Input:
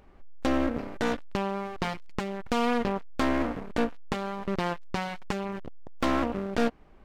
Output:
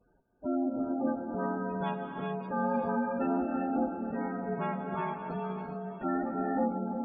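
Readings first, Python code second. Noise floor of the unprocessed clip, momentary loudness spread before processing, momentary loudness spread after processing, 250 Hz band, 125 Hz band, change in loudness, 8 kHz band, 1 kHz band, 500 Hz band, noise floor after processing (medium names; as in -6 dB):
-53 dBFS, 7 LU, 6 LU, -1.0 dB, -3.0 dB, -2.5 dB, under -30 dB, -1.5 dB, -3.0 dB, -68 dBFS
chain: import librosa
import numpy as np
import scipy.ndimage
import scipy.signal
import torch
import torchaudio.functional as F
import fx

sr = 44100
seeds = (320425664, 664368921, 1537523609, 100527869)

y = fx.partial_stretch(x, sr, pct=118)
y = fx.high_shelf(y, sr, hz=2200.0, db=-4.0)
y = fx.notch_comb(y, sr, f0_hz=1000.0)
y = fx.echo_diffused(y, sr, ms=559, feedback_pct=44, wet_db=-9.0)
y = fx.spec_gate(y, sr, threshold_db=-15, keep='strong')
y = fx.peak_eq(y, sr, hz=950.0, db=13.5, octaves=0.23)
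y = fx.rev_gated(y, sr, seeds[0], gate_ms=450, shape='rising', drr_db=0.0)
y = y * 10.0 ** (-4.0 / 20.0)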